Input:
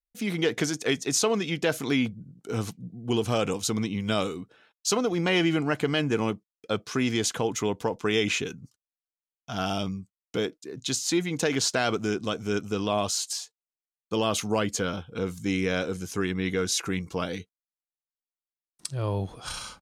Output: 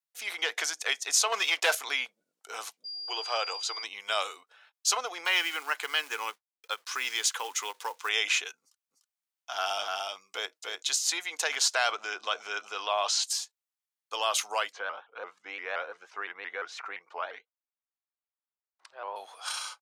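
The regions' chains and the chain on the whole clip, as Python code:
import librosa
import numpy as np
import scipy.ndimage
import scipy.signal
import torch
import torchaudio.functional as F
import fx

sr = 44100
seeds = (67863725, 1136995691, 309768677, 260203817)

y = fx.chain(x, sr, fx.peak_eq(hz=160.0, db=-5.5, octaves=0.72),
    fx.leveller(passes=2), at=(1.32, 1.75))
y = fx.dmg_tone(y, sr, hz=4800.0, level_db=-33.0, at=(2.84, 3.82), fade=0.02)
y = fx.brickwall_highpass(y, sr, low_hz=280.0, at=(2.84, 3.82), fade=0.02)
y = fx.air_absorb(y, sr, metres=99.0, at=(2.84, 3.82), fade=0.02)
y = fx.chain(y, sr, fx.highpass(hz=44.0, slope=24),
    fx.peak_eq(hz=660.0, db=-12.5, octaves=0.36),
    fx.quant_companded(bits=6), at=(5.25, 8.09))
y = fx.chain(y, sr, fx.low_shelf(hz=110.0, db=7.0),
    fx.echo_single(ms=296, db=-3.0), at=(8.61, 10.83))
y = fx.chain(y, sr, fx.bandpass_edges(low_hz=110.0, high_hz=4600.0),
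    fx.env_flatten(amount_pct=50), at=(11.91, 13.24))
y = fx.chain(y, sr, fx.lowpass(hz=1700.0, slope=12),
    fx.vibrato_shape(shape='saw_up', rate_hz=5.8, depth_cents=160.0), at=(14.72, 19.16))
y = scipy.signal.sosfilt(scipy.signal.butter(4, 720.0, 'highpass', fs=sr, output='sos'), y)
y = fx.end_taper(y, sr, db_per_s=580.0)
y = y * librosa.db_to_amplitude(1.5)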